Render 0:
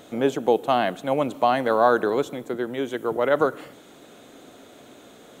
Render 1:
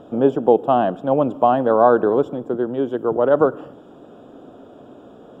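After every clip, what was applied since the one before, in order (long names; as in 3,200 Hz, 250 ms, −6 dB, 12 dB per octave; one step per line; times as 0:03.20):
moving average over 21 samples
level +6.5 dB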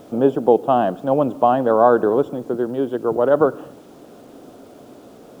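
bit reduction 9 bits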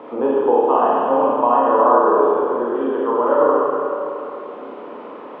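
loudspeaker in its box 480–2,400 Hz, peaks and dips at 680 Hz −10 dB, 1,000 Hz +8 dB, 1,500 Hz −6 dB
four-comb reverb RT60 2.1 s, combs from 26 ms, DRR −7 dB
multiband upward and downward compressor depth 40%
level −1.5 dB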